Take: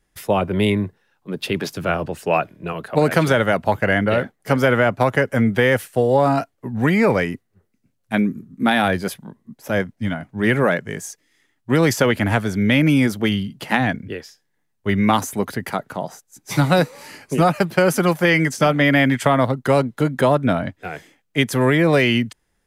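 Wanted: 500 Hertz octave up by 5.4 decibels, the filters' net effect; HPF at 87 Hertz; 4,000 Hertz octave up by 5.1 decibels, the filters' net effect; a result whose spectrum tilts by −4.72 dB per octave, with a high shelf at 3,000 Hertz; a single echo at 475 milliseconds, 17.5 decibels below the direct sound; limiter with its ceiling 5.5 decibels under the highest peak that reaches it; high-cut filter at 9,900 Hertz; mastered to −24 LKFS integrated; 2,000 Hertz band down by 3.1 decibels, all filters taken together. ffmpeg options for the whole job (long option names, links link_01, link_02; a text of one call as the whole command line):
ffmpeg -i in.wav -af "highpass=87,lowpass=9900,equalizer=frequency=500:width_type=o:gain=6.5,equalizer=frequency=2000:width_type=o:gain=-7.5,highshelf=frequency=3000:gain=6,equalizer=frequency=4000:width_type=o:gain=5.5,alimiter=limit=-5.5dB:level=0:latency=1,aecho=1:1:475:0.133,volume=-6dB" out.wav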